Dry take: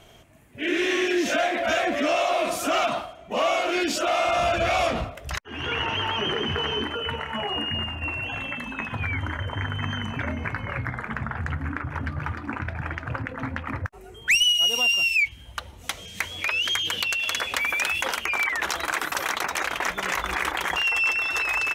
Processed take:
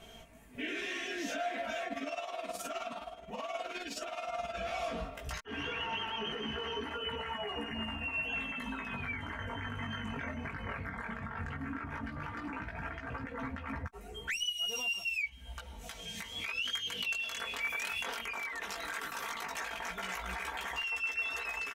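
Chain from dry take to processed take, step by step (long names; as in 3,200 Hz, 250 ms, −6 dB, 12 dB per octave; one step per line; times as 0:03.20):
comb filter 4.4 ms, depth 59%
downward compressor 4 to 1, threshold −32 dBFS, peak gain reduction 15 dB
brickwall limiter −25.5 dBFS, peak gain reduction 9 dB
multi-voice chorus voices 2, 0.14 Hz, delay 18 ms, depth 3.7 ms
0:01.87–0:04.57: amplitude tremolo 19 Hz, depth 62%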